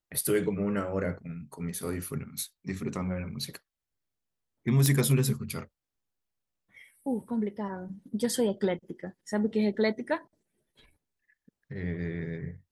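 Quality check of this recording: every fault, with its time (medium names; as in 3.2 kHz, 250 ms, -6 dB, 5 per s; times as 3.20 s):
4.86 s: pop -10 dBFS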